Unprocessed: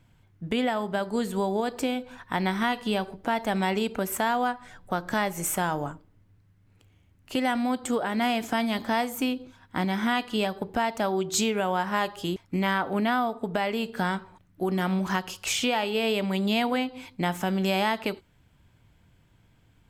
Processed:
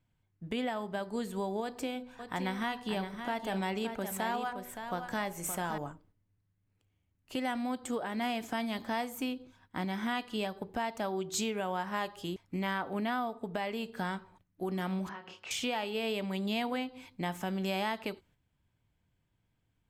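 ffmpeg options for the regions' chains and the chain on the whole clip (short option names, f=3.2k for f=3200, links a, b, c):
-filter_complex "[0:a]asettb=1/sr,asplit=3[a][b][c];[a]atrim=end=1.624[d];[b]atrim=start=1.62:end=5.78,asetpts=PTS-STARTPTS,afade=t=in:d=0.004:c=qsin,afade=t=out:st=4.156:d=0.004:c=qsin,bandreject=f=82.05:t=h:w=4,bandreject=f=164.1:t=h:w=4,bandreject=f=246.15:t=h:w=4,bandreject=f=328.2:t=h:w=4,bandreject=f=410.25:t=h:w=4,bandreject=f=492.3:t=h:w=4,bandreject=f=574.35:t=h:w=4,bandreject=f=656.4:t=h:w=4,bandreject=f=738.45:t=h:w=4,bandreject=f=820.5:t=h:w=4,bandreject=f=902.55:t=h:w=4,bandreject=f=984.6:t=h:w=4,bandreject=f=1.06665k:t=h:w=4,bandreject=f=1.1487k:t=h:w=4,aecho=1:1:569:0.398,atrim=end_sample=183456[e];[c]atrim=start=5.776[f];[d][e]acrossfade=d=0.004:c1=hsin:c2=qsin[g];[g][f]acrossfade=d=0.004:c1=qsin:c2=hsin,asettb=1/sr,asplit=3[h][i][j];[h]atrim=end=15.094[k];[i]atrim=start=15.09:end=15.51,asetpts=PTS-STARTPTS,afade=t=in:d=0.004:c=qsin,afade=t=out:st=0.416:d=0.004:c=qsin,highpass=170,lowpass=2.8k,acompressor=threshold=-34dB:ratio=3:attack=3.2:release=140:knee=1:detection=peak,asplit=2[l][m];[m]adelay=29,volume=-5.5dB[n];[l][n]amix=inputs=2:normalize=0,atrim=end_sample=18522[o];[j]atrim=start=15.506[p];[k][o]acrossfade=d=0.004:c1=hsin:c2=qsin[q];[q][p]acrossfade=d=0.004:c1=qsin:c2=hsin,agate=range=-8dB:threshold=-55dB:ratio=16:detection=peak,bandreject=f=1.4k:w=24,volume=-8dB"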